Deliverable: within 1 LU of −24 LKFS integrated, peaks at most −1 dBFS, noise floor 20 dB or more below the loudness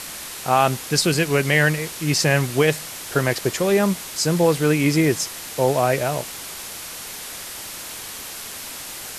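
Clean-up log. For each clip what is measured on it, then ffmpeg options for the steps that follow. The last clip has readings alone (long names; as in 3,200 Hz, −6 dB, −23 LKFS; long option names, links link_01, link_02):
background noise floor −35 dBFS; target noise floor −42 dBFS; integrated loudness −21.5 LKFS; sample peak −3.5 dBFS; target loudness −24.0 LKFS
→ -af "afftdn=noise_reduction=7:noise_floor=-35"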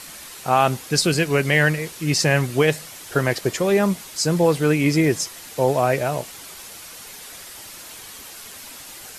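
background noise floor −40 dBFS; target noise floor −41 dBFS
→ -af "afftdn=noise_reduction=6:noise_floor=-40"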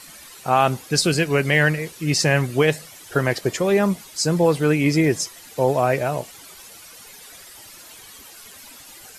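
background noise floor −44 dBFS; integrated loudness −20.5 LKFS; sample peak −3.5 dBFS; target loudness −24.0 LKFS
→ -af "volume=-3.5dB"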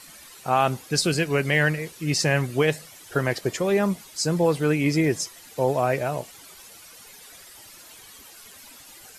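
integrated loudness −24.0 LKFS; sample peak −7.0 dBFS; background noise floor −47 dBFS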